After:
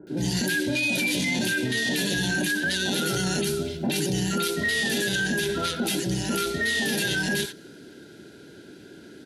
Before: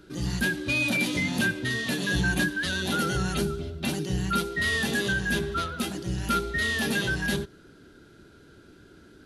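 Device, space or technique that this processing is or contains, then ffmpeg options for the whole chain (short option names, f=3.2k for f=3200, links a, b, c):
PA system with an anti-feedback notch: -filter_complex "[0:a]highpass=160,asuperstop=centerf=1200:order=4:qfactor=3.1,acrossover=split=1100[a][b];[b]adelay=70[c];[a][c]amix=inputs=2:normalize=0,alimiter=level_in=2dB:limit=-24dB:level=0:latency=1:release=21,volume=-2dB,adynamicequalizer=threshold=0.00398:dfrequency=3700:dqfactor=0.7:tfrequency=3700:tqfactor=0.7:attack=5:release=100:ratio=0.375:range=2:mode=boostabove:tftype=highshelf,volume=8dB"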